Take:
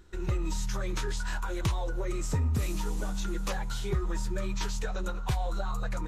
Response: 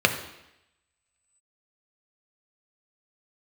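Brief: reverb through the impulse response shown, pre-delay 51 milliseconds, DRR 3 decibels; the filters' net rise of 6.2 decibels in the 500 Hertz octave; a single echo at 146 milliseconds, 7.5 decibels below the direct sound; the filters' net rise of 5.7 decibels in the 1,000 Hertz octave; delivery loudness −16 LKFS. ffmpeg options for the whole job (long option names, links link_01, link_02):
-filter_complex "[0:a]equalizer=frequency=500:width_type=o:gain=7,equalizer=frequency=1000:width_type=o:gain=5,aecho=1:1:146:0.422,asplit=2[link_01][link_02];[1:a]atrim=start_sample=2205,adelay=51[link_03];[link_02][link_03]afir=irnorm=-1:irlink=0,volume=-20.5dB[link_04];[link_01][link_04]amix=inputs=2:normalize=0,volume=13.5dB"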